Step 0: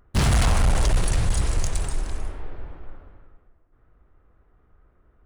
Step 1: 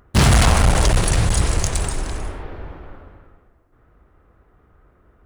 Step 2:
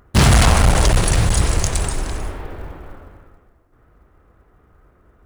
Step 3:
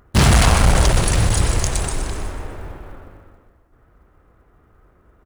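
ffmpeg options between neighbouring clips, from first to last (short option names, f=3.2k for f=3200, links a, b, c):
-af "highpass=f=60:p=1,volume=8dB"
-af "acrusher=bits=8:mode=log:mix=0:aa=0.000001,volume=1.5dB"
-af "aecho=1:1:124|248|372|496|620|744:0.282|0.149|0.0792|0.042|0.0222|0.0118,volume=-1dB"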